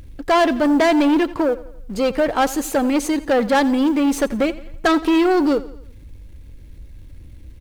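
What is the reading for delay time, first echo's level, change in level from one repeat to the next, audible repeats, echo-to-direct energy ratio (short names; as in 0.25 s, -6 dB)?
86 ms, -18.0 dB, -6.5 dB, 3, -17.0 dB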